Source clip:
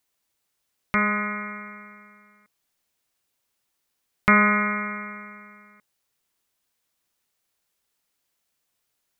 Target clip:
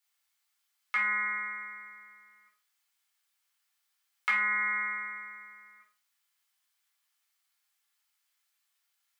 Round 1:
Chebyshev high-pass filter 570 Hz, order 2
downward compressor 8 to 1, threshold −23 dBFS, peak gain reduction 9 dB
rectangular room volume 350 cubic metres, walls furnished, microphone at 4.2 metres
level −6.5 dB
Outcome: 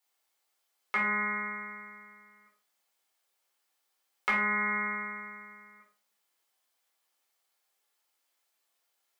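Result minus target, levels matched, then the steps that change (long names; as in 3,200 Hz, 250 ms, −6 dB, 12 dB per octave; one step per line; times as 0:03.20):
500 Hz band +15.5 dB
change: Chebyshev high-pass filter 1,400 Hz, order 2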